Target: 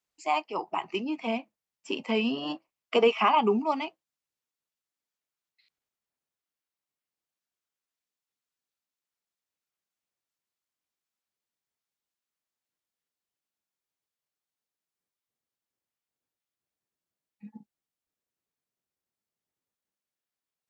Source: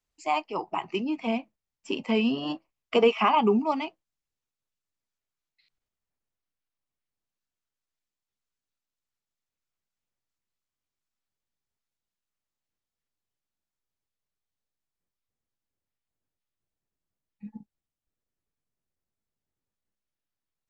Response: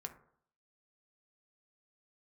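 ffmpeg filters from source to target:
-af "highpass=frequency=270:poles=1"

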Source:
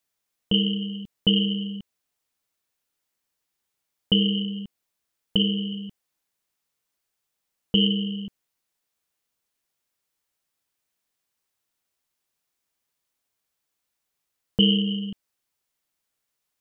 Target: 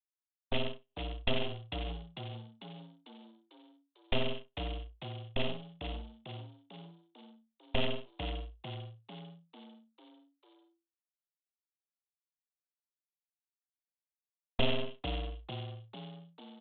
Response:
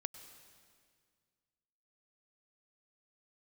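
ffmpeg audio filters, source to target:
-filter_complex "[0:a]lowpass=1500,agate=range=-44dB:threshold=-25dB:ratio=16:detection=peak,highpass=frequency=250:width=0.5412,highpass=frequency=250:width=1.3066,aresample=8000,aeval=exprs='abs(val(0))':channel_layout=same,aresample=44100,asplit=7[link_01][link_02][link_03][link_04][link_05][link_06][link_07];[link_02]adelay=447,afreqshift=56,volume=-8dB[link_08];[link_03]adelay=894,afreqshift=112,volume=-13.5dB[link_09];[link_04]adelay=1341,afreqshift=168,volume=-19dB[link_10];[link_05]adelay=1788,afreqshift=224,volume=-24.5dB[link_11];[link_06]adelay=2235,afreqshift=280,volume=-30.1dB[link_12];[link_07]adelay=2682,afreqshift=336,volume=-35.6dB[link_13];[link_01][link_08][link_09][link_10][link_11][link_12][link_13]amix=inputs=7:normalize=0"

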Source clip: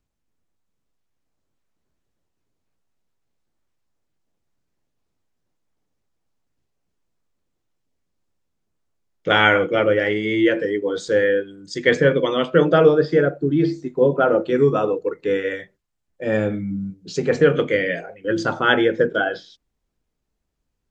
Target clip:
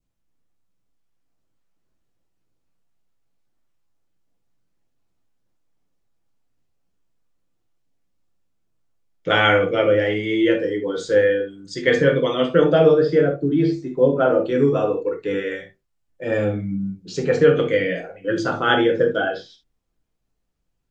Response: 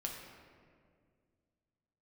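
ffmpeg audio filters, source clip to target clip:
-filter_complex "[0:a]adynamicequalizer=threshold=0.0224:dfrequency=1600:dqfactor=1.6:tfrequency=1600:tqfactor=1.6:attack=5:release=100:ratio=0.375:range=2:mode=cutabove:tftype=bell[link_01];[1:a]atrim=start_sample=2205,atrim=end_sample=3528[link_02];[link_01][link_02]afir=irnorm=-1:irlink=0,volume=1dB"

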